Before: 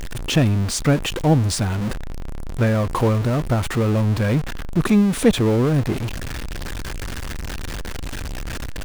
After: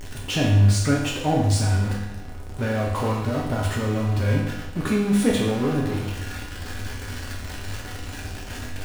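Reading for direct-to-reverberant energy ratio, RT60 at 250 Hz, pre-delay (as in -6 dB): -4.5 dB, 0.90 s, 4 ms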